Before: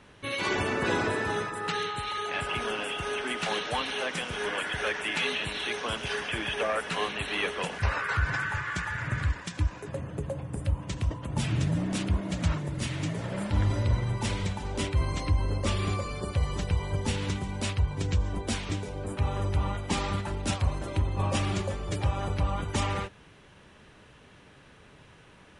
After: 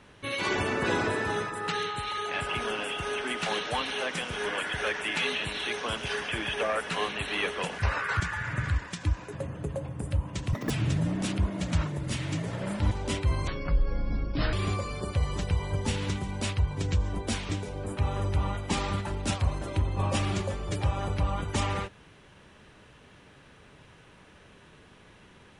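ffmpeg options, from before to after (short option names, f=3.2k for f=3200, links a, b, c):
-filter_complex "[0:a]asplit=7[a][b][c][d][e][f][g];[a]atrim=end=8.202[h];[b]atrim=start=8.738:end=11.074[i];[c]atrim=start=11.07:end=11.41,asetpts=PTS-STARTPTS,asetrate=86877,aresample=44100,atrim=end_sample=7611,asetpts=PTS-STARTPTS[j];[d]atrim=start=11.406:end=13.622[k];[e]atrim=start=14.608:end=15.174[l];[f]atrim=start=15.17:end=15.73,asetpts=PTS-STARTPTS,asetrate=23373,aresample=44100,atrim=end_sample=46596,asetpts=PTS-STARTPTS[m];[g]atrim=start=15.726[n];[h][i]acrossfade=d=0.004:c1=hsin:c2=hsin[o];[o][j]acrossfade=d=0.004:c1=hsin:c2=hsin[p];[p][k]acrossfade=d=0.004:c1=hsin:c2=hsin[q];[q][l]acrossfade=d=0.004:c1=hsin:c2=hsin[r];[r][m]acrossfade=d=0.004:c1=hsin:c2=hsin[s];[s][n]acrossfade=d=0.004:c1=hsin:c2=hsin"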